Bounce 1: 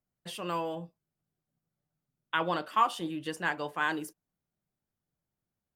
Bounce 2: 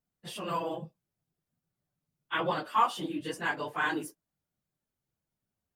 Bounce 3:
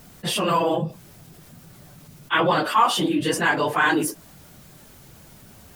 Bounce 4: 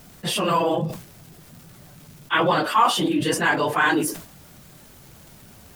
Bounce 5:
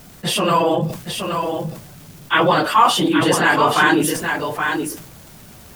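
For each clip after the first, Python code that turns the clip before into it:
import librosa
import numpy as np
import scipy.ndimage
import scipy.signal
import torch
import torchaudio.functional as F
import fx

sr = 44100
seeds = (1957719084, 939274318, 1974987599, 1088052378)

y1 = fx.phase_scramble(x, sr, seeds[0], window_ms=50)
y2 = fx.env_flatten(y1, sr, amount_pct=50)
y2 = y2 * librosa.db_to_amplitude(6.5)
y3 = fx.dmg_crackle(y2, sr, seeds[1], per_s=150.0, level_db=-39.0)
y3 = fx.sustainer(y3, sr, db_per_s=110.0)
y4 = y3 + 10.0 ** (-6.0 / 20.0) * np.pad(y3, (int(823 * sr / 1000.0), 0))[:len(y3)]
y4 = y4 * librosa.db_to_amplitude(4.5)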